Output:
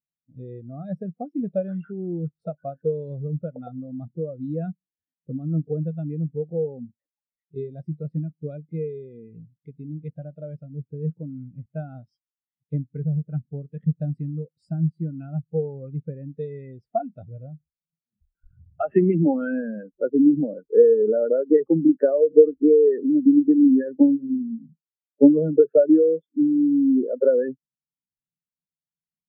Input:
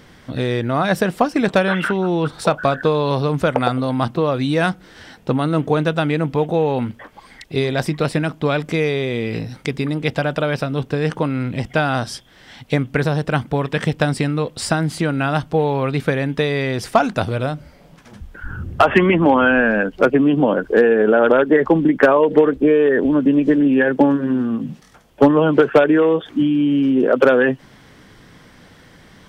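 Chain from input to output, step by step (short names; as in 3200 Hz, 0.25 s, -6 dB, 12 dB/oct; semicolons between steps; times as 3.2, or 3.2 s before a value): thirty-one-band EQ 160 Hz +4 dB, 1000 Hz -11 dB, 1600 Hz -4 dB; spectral expander 2.5:1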